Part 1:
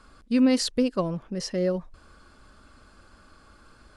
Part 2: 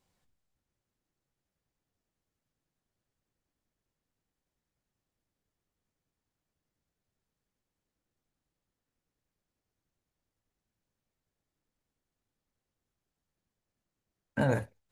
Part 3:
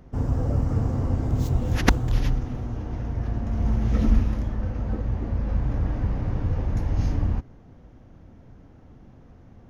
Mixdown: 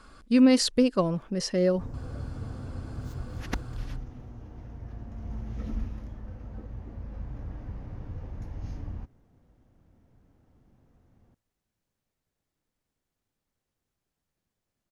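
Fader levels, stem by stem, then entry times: +1.5, +2.0, −13.5 decibels; 0.00, 1.00, 1.65 seconds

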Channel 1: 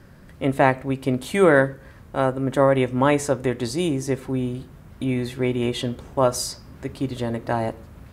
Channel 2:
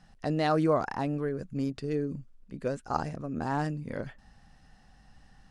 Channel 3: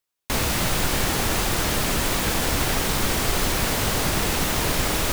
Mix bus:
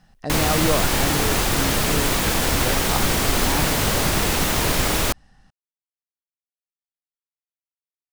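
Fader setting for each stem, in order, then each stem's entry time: muted, +2.0 dB, +2.5 dB; muted, 0.00 s, 0.00 s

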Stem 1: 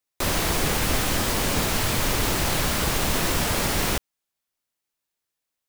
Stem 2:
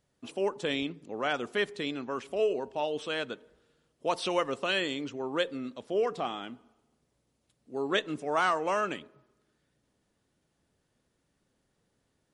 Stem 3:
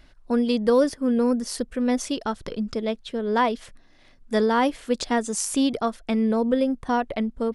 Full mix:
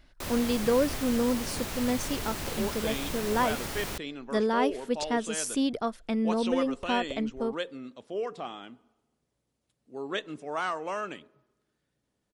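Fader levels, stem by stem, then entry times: −12.0, −4.5, −5.5 decibels; 0.00, 2.20, 0.00 seconds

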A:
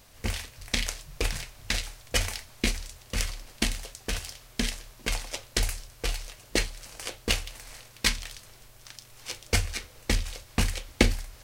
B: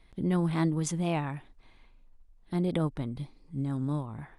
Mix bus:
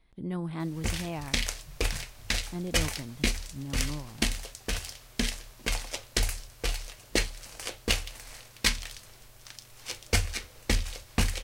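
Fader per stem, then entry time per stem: −0.5, −6.5 decibels; 0.60, 0.00 seconds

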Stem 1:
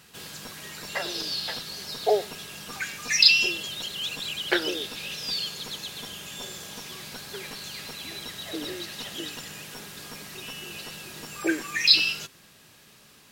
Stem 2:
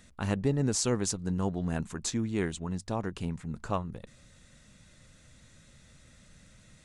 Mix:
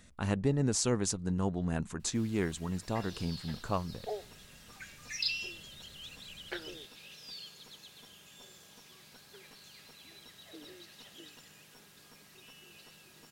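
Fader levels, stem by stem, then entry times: −16.5, −1.5 decibels; 2.00, 0.00 seconds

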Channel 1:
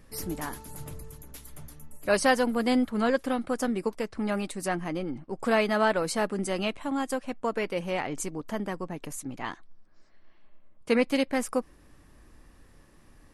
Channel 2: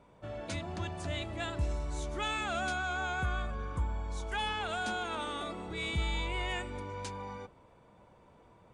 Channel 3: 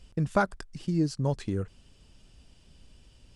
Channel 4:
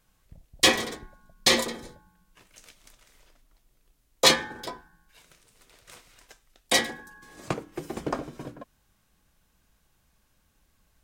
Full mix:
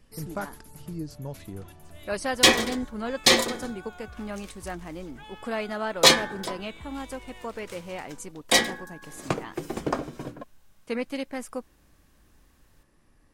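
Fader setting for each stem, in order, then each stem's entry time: −6.5, −13.0, −9.0, +2.5 decibels; 0.00, 0.85, 0.00, 1.80 seconds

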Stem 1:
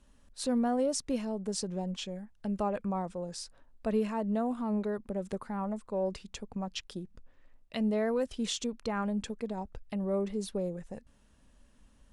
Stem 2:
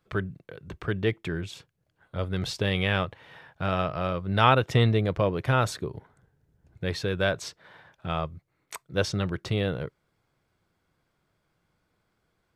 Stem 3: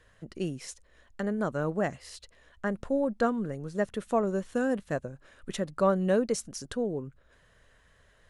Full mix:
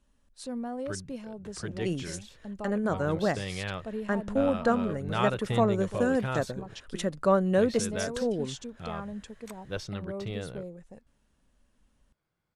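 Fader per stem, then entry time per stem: −6.5, −9.5, +1.5 decibels; 0.00, 0.75, 1.45 seconds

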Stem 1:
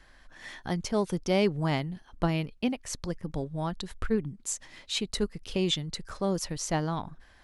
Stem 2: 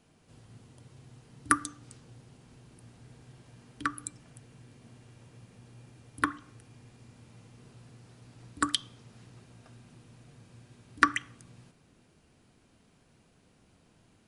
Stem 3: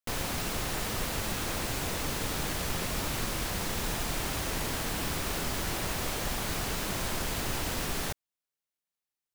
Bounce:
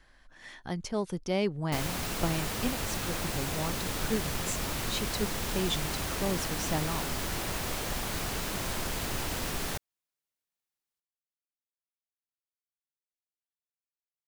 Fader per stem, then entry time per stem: −4.0 dB, muted, −1.0 dB; 0.00 s, muted, 1.65 s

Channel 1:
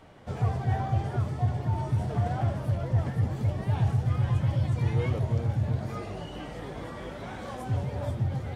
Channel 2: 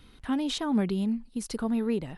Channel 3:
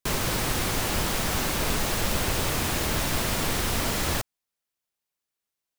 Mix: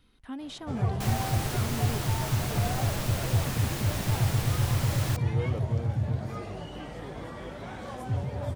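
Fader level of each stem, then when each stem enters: −1.0, −10.0, −8.0 decibels; 0.40, 0.00, 0.95 seconds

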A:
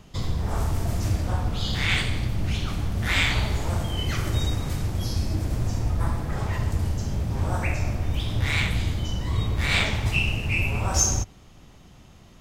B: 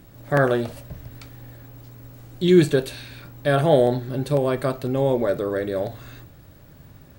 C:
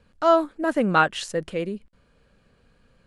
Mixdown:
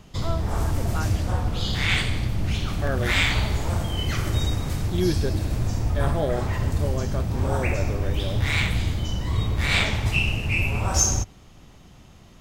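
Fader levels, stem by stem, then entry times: +1.0, −9.5, −15.5 decibels; 0.00, 2.50, 0.00 seconds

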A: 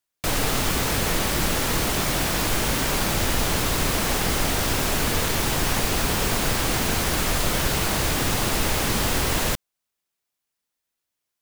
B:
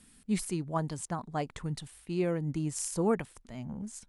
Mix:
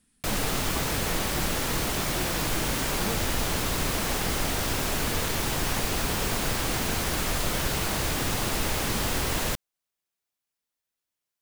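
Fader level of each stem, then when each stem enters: −4.5, −9.0 decibels; 0.00, 0.00 seconds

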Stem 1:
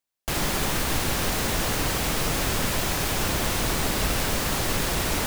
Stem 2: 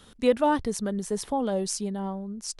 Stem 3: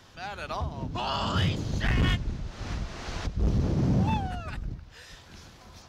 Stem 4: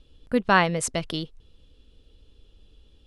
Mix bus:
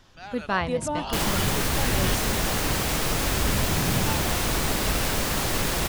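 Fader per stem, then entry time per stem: 0.0, −7.0, −3.5, −7.0 decibels; 0.85, 0.45, 0.00, 0.00 seconds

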